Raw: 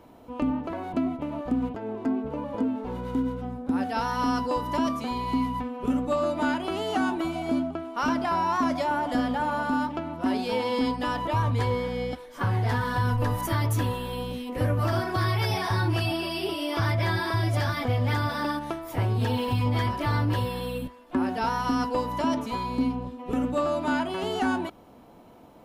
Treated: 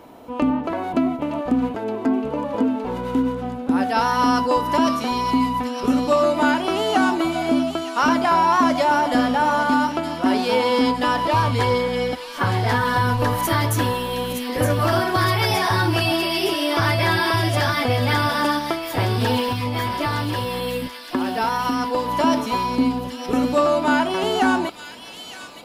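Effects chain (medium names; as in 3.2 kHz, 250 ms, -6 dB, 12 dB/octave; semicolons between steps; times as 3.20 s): 19.39–22.08 s: compression 2.5:1, threshold -28 dBFS, peak gain reduction 5.5 dB; bass shelf 150 Hz -10 dB; feedback echo behind a high-pass 916 ms, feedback 63%, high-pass 2.8 kHz, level -5.5 dB; trim +9 dB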